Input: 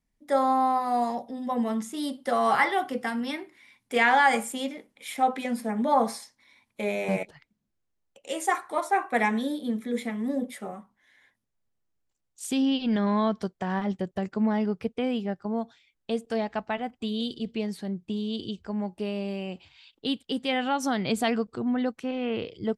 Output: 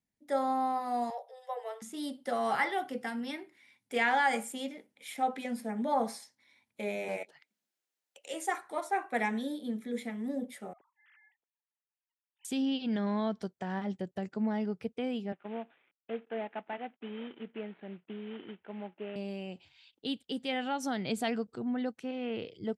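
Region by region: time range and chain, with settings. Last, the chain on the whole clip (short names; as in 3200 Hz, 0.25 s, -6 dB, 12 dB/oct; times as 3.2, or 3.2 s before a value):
1.1–1.82 steep high-pass 430 Hz 96 dB/oct + dynamic EQ 6900 Hz, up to -6 dB, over -59 dBFS, Q 0.85
7.08–8.34 HPF 370 Hz + mismatched tape noise reduction encoder only
10.73–12.45 sine-wave speech + compressor, threshold -53 dBFS
15.32–19.16 CVSD 16 kbps + HPF 270 Hz + air absorption 65 m
whole clip: HPF 89 Hz; bell 1100 Hz -6 dB 0.26 oct; gain -6.5 dB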